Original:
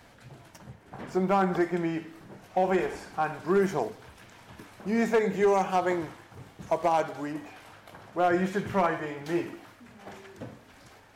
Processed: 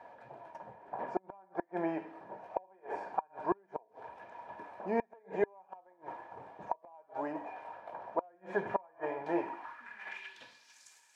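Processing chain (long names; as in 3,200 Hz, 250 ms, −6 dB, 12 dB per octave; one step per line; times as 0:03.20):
band-pass filter sweep 660 Hz → 7,400 Hz, 0:09.36–0:10.85
gate with flip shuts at −25 dBFS, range −37 dB
hollow resonant body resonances 950/1,700/2,400 Hz, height 13 dB, ringing for 45 ms
level +6 dB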